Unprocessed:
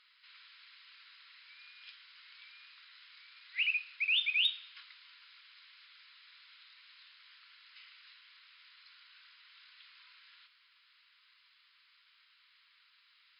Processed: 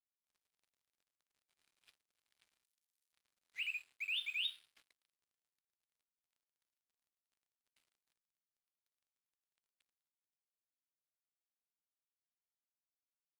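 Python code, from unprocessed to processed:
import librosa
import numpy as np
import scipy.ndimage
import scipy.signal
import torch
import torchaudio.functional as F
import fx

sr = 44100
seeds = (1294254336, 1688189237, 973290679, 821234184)

y = np.sign(x) * np.maximum(np.abs(x) - 10.0 ** (-50.5 / 20.0), 0.0)
y = fx.differentiator(y, sr, at=(2.64, 3.13))
y = y * 10.0 ** (-8.5 / 20.0)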